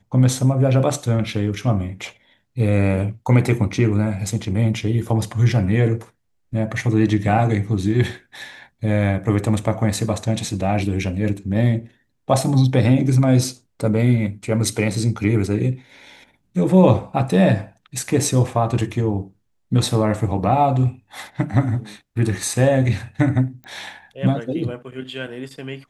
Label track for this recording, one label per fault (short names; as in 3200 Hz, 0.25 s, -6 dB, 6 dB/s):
23.640000	23.640000	pop -25 dBFS